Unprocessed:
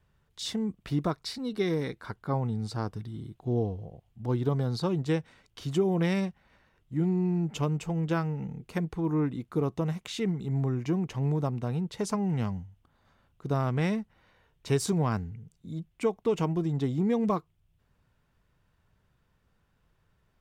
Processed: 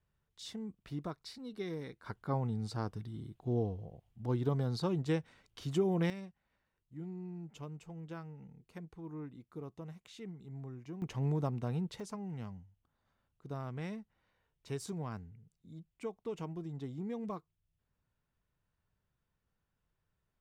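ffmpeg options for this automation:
ffmpeg -i in.wav -af "asetnsamples=nb_out_samples=441:pad=0,asendcmd='2.06 volume volume -5dB;6.1 volume volume -17dB;11.02 volume volume -5dB;12 volume volume -13.5dB',volume=-12dB" out.wav

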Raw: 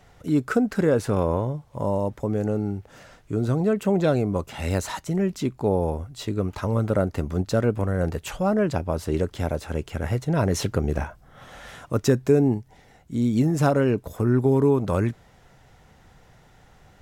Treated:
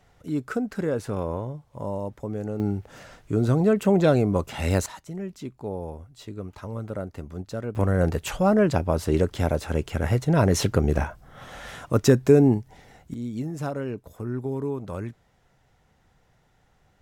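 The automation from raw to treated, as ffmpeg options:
ffmpeg -i in.wav -af "asetnsamples=nb_out_samples=441:pad=0,asendcmd='2.6 volume volume 2dB;4.86 volume volume -10dB;7.75 volume volume 2.5dB;13.14 volume volume -10dB',volume=-6dB" out.wav

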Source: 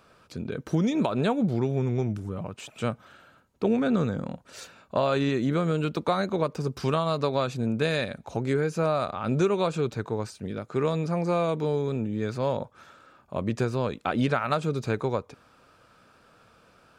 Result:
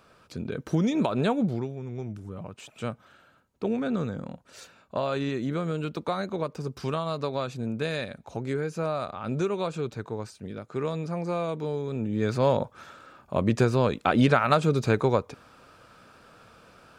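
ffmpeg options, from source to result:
ffmpeg -i in.wav -af "volume=16dB,afade=type=out:start_time=1.4:duration=0.36:silence=0.266073,afade=type=in:start_time=1.76:duration=0.72:silence=0.421697,afade=type=in:start_time=11.89:duration=0.45:silence=0.375837" out.wav

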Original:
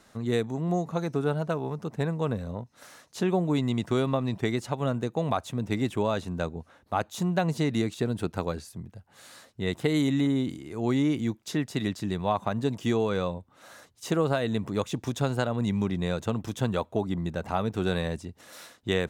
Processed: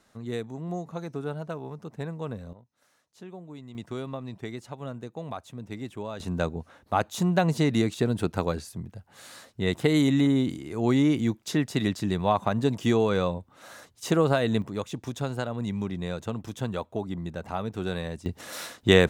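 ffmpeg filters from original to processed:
ffmpeg -i in.wav -af "asetnsamples=nb_out_samples=441:pad=0,asendcmd='2.53 volume volume -17.5dB;3.75 volume volume -9dB;6.2 volume volume 3dB;14.62 volume volume -3.5dB;18.26 volume volume 9dB',volume=-6dB" out.wav

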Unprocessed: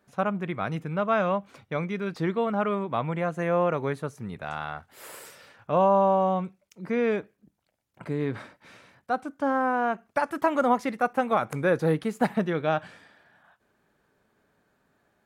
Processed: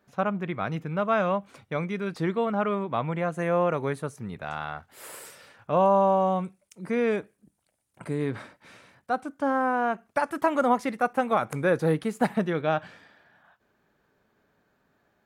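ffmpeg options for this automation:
ffmpeg -i in.wav -af "asetnsamples=nb_out_samples=441:pad=0,asendcmd='0.97 equalizer g 5;2.45 equalizer g -2.5;3.32 equalizer g 7.5;4.16 equalizer g -2;4.92 equalizer g 4;5.86 equalizer g 14.5;8.3 equalizer g 3.5;12.61 equalizer g -8',equalizer=frequency=9200:width_type=o:width=0.53:gain=-6.5" out.wav

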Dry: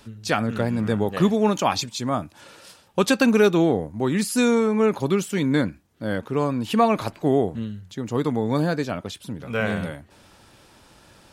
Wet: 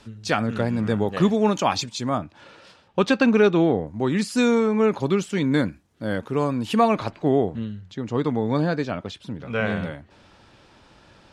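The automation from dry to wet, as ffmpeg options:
ffmpeg -i in.wav -af "asetnsamples=nb_out_samples=441:pad=0,asendcmd='2.18 lowpass f 3800;3.87 lowpass f 6300;5.52 lowpass f 11000;6.95 lowpass f 4800',lowpass=7800" out.wav

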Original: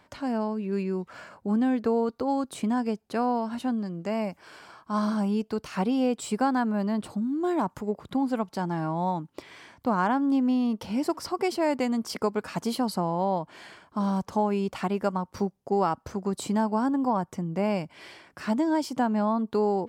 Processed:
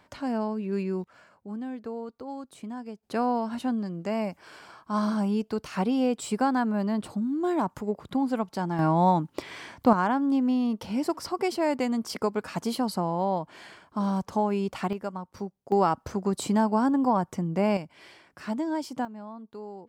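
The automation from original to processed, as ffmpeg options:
ffmpeg -i in.wav -af "asetnsamples=nb_out_samples=441:pad=0,asendcmd='1.04 volume volume -11dB;3.03 volume volume 0dB;8.79 volume volume 6.5dB;9.93 volume volume -0.5dB;14.93 volume volume -7dB;15.72 volume volume 2dB;17.77 volume volume -4.5dB;19.05 volume volume -16dB',volume=-0.5dB" out.wav

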